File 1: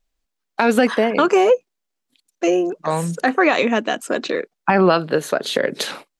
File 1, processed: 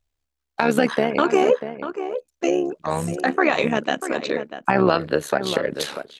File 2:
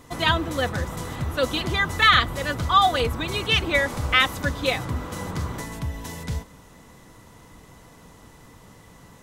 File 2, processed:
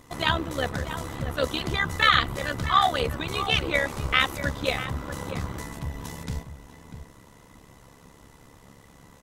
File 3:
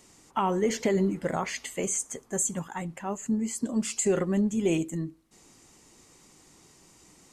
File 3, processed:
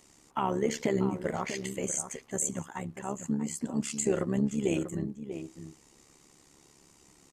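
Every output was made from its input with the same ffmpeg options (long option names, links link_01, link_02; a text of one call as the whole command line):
ffmpeg -i in.wav -filter_complex "[0:a]tremolo=f=70:d=0.75,asplit=2[link_01][link_02];[link_02]adelay=641.4,volume=-10dB,highshelf=frequency=4000:gain=-14.4[link_03];[link_01][link_03]amix=inputs=2:normalize=0" out.wav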